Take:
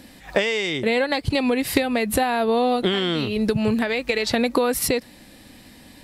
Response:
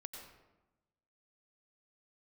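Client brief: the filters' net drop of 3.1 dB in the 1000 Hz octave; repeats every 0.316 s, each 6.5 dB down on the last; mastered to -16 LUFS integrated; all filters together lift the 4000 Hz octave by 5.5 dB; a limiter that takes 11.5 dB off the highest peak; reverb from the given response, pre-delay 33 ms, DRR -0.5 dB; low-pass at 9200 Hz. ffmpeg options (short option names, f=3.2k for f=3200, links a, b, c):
-filter_complex "[0:a]lowpass=9.2k,equalizer=f=1k:t=o:g=-5,equalizer=f=4k:t=o:g=7,alimiter=limit=-15dB:level=0:latency=1,aecho=1:1:316|632|948|1264|1580|1896:0.473|0.222|0.105|0.0491|0.0231|0.0109,asplit=2[a][b];[1:a]atrim=start_sample=2205,adelay=33[c];[b][c]afir=irnorm=-1:irlink=0,volume=4.5dB[d];[a][d]amix=inputs=2:normalize=0,volume=3.5dB"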